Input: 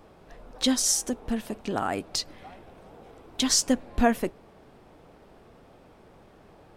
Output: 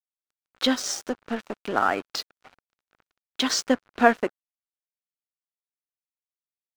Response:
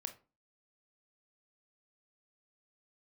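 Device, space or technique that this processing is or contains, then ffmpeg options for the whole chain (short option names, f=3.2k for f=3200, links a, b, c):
pocket radio on a weak battery: -af "highpass=300,lowpass=4k,aeval=exprs='sgn(val(0))*max(abs(val(0))-0.00794,0)':c=same,equalizer=f=1.4k:t=o:w=0.49:g=6.5,volume=5.5dB"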